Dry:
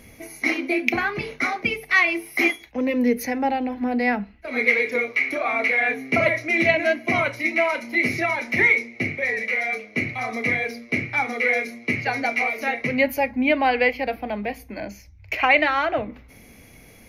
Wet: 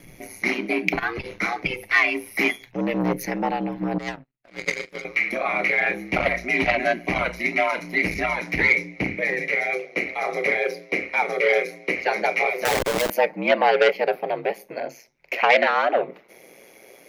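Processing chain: high-pass sweep 66 Hz -> 450 Hz, 8.08–9.89; 3.98–5.05 power-law curve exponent 2; 12.65–13.1 Schmitt trigger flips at -35.5 dBFS; ring modulator 60 Hz; core saturation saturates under 1400 Hz; gain +2.5 dB

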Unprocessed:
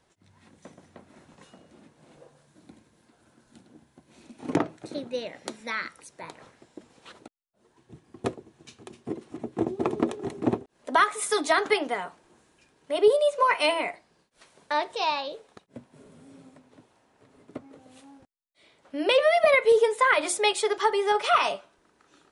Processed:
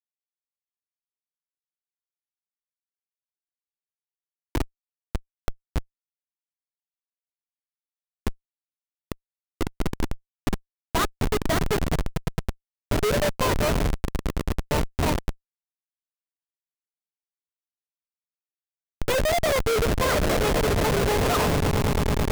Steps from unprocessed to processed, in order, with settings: swelling echo 0.109 s, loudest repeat 8, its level -14 dB; Schmitt trigger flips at -19.5 dBFS; gain +5.5 dB

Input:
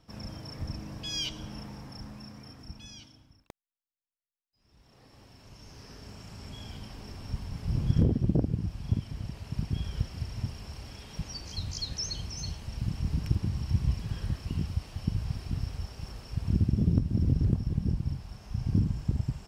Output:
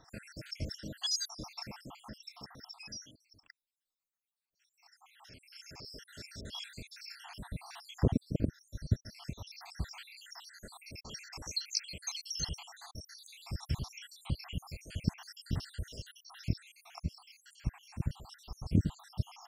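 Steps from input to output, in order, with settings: random spectral dropouts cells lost 77%; low shelf 390 Hz -10.5 dB; gain +8 dB

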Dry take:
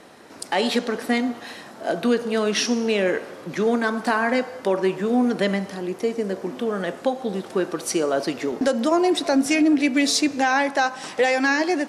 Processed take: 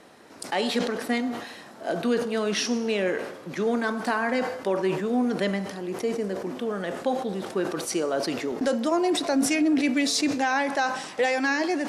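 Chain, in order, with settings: sustainer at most 68 dB/s; gain -4.5 dB

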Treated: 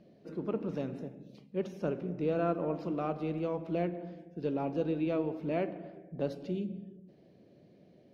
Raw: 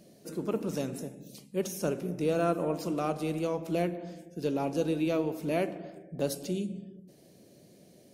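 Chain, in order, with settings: air absorption 310 m; on a send: tape echo 0.162 s, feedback 49%, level -23.5 dB, low-pass 2400 Hz; on the sum: gain -2 dB

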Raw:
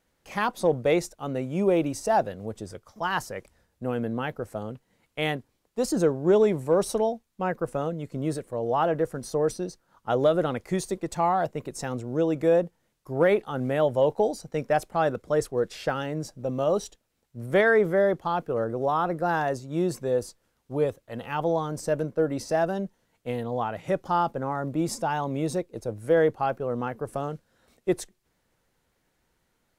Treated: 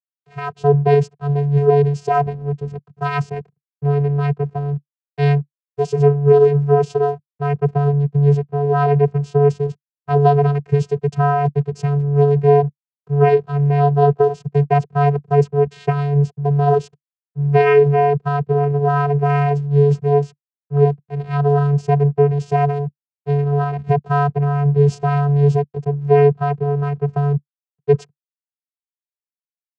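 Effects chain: backlash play -40 dBFS; vocoder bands 8, square 143 Hz; AGC gain up to 11 dB; gain +1 dB

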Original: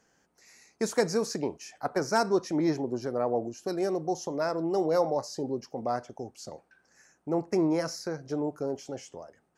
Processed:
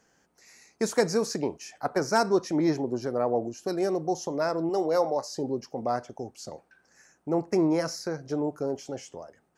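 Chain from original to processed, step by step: 4.69–5.33 HPF 290 Hz 6 dB/oct; gain +2 dB

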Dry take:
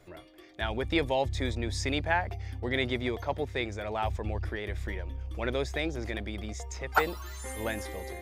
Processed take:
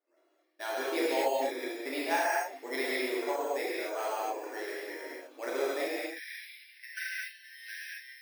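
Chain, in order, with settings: gate -41 dBFS, range -21 dB; brick-wall FIR high-pass 270 Hz, from 5.91 s 1500 Hz; careless resampling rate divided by 6×, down filtered, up hold; bell 8400 Hz -5 dB 2 oct; non-linear reverb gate 0.29 s flat, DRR -8 dB; gain -7.5 dB

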